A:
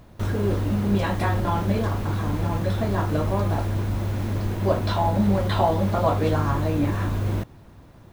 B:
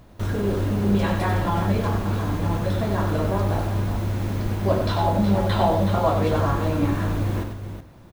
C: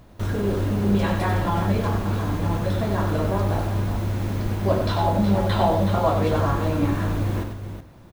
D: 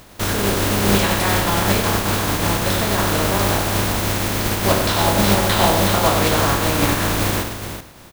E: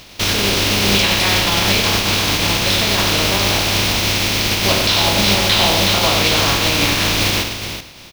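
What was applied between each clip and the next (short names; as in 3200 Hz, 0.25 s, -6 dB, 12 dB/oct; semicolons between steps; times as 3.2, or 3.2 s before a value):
de-hum 75.26 Hz, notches 35; on a send: tapped delay 94/371 ms -6/-9 dB
nothing audible
spectral contrast lowered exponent 0.53; gain +4 dB
band shelf 3600 Hz +10.5 dB; in parallel at +2.5 dB: limiter -6.5 dBFS, peak gain reduction 8 dB; on the sum: gain -7 dB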